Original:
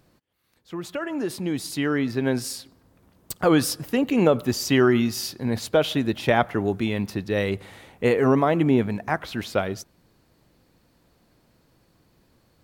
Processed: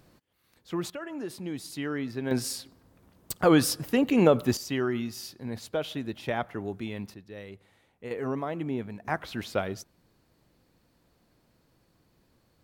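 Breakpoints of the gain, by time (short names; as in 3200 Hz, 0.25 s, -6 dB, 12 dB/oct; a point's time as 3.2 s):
+1.5 dB
from 0.9 s -8.5 dB
from 2.31 s -1.5 dB
from 4.57 s -10.5 dB
from 7.14 s -19 dB
from 8.11 s -12.5 dB
from 9.05 s -5 dB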